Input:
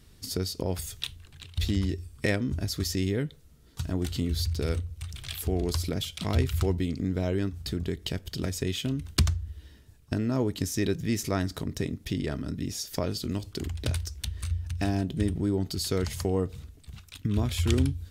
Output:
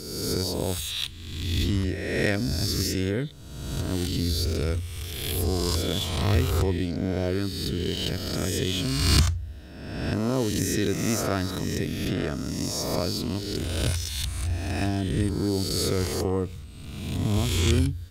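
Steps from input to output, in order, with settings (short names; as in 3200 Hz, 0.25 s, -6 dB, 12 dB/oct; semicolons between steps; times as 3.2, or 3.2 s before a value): spectral swells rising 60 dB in 1.32 s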